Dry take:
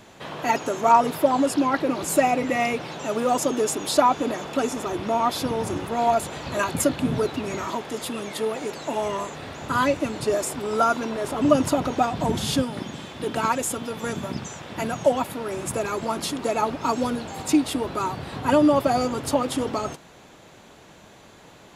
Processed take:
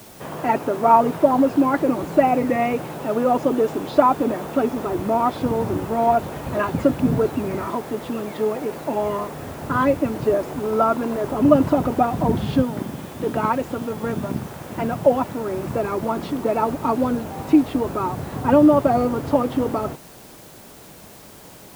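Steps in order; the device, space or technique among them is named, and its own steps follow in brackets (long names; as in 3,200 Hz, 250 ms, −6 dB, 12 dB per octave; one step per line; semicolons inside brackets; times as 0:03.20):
cassette deck with a dirty head (head-to-tape spacing loss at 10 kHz 42 dB; tape wow and flutter; white noise bed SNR 26 dB)
level +6 dB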